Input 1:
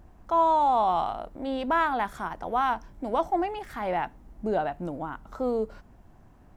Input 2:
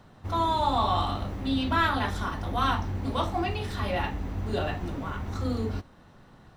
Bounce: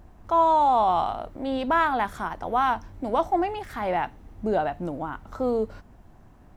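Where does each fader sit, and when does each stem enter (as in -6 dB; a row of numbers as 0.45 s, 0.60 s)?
+2.5 dB, -18.0 dB; 0.00 s, 0.00 s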